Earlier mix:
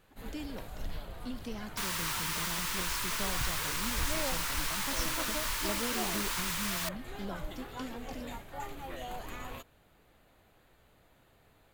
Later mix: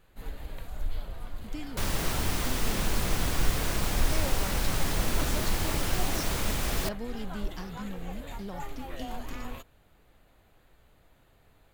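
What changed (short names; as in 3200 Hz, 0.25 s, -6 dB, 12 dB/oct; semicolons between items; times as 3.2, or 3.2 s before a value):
speech: entry +1.20 s; second sound: remove brick-wall FIR high-pass 860 Hz; master: add low shelf 62 Hz +9.5 dB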